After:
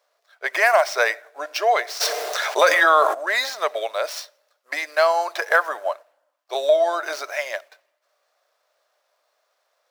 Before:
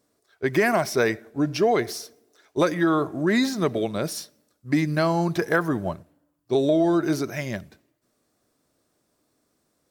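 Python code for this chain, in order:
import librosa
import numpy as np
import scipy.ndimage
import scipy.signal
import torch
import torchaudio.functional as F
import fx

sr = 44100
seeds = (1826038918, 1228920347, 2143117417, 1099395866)

y = scipy.signal.medfilt(x, 5)
y = scipy.signal.sosfilt(scipy.signal.ellip(4, 1.0, 80, 570.0, 'highpass', fs=sr, output='sos'), y)
y = fx.env_flatten(y, sr, amount_pct=70, at=(2.0, 3.13), fade=0.02)
y = y * 10.0 ** (7.0 / 20.0)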